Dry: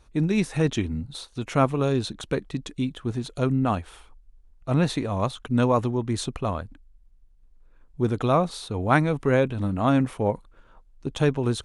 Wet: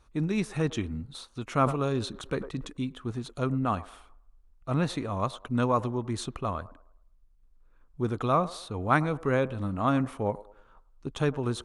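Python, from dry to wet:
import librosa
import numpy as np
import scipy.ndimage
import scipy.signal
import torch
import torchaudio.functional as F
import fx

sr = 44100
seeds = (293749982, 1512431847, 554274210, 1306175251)

y = fx.peak_eq(x, sr, hz=1200.0, db=6.0, octaves=0.51)
y = fx.echo_wet_bandpass(y, sr, ms=105, feedback_pct=36, hz=670.0, wet_db=-17.0)
y = fx.sustainer(y, sr, db_per_s=110.0, at=(1.53, 2.73))
y = y * 10.0 ** (-5.5 / 20.0)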